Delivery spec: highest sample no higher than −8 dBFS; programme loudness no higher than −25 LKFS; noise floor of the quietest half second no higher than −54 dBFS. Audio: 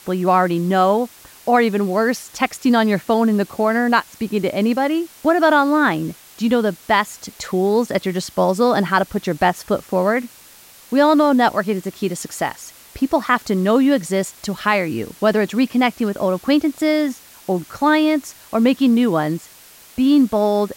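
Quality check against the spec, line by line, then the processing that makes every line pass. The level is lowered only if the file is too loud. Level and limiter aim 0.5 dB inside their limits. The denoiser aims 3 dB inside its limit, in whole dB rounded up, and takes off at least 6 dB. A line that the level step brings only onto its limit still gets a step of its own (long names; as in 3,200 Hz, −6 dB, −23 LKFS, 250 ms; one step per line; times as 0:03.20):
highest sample −3.5 dBFS: out of spec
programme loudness −18.0 LKFS: out of spec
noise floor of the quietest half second −45 dBFS: out of spec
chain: broadband denoise 6 dB, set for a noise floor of −45 dBFS
level −7.5 dB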